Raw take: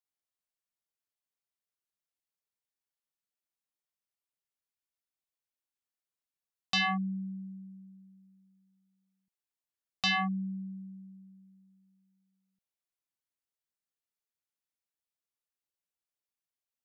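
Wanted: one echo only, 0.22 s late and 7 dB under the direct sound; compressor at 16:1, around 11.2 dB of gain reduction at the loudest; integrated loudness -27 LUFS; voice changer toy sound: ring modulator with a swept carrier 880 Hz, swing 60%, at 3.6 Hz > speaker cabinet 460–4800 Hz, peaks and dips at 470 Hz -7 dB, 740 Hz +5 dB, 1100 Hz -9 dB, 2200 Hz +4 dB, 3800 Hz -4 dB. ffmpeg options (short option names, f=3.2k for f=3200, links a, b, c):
-af "acompressor=threshold=-37dB:ratio=16,aecho=1:1:220:0.447,aeval=exprs='val(0)*sin(2*PI*880*n/s+880*0.6/3.6*sin(2*PI*3.6*n/s))':c=same,highpass=460,equalizer=f=470:t=q:w=4:g=-7,equalizer=f=740:t=q:w=4:g=5,equalizer=f=1.1k:t=q:w=4:g=-9,equalizer=f=2.2k:t=q:w=4:g=4,equalizer=f=3.8k:t=q:w=4:g=-4,lowpass=f=4.8k:w=0.5412,lowpass=f=4.8k:w=1.3066,volume=17dB"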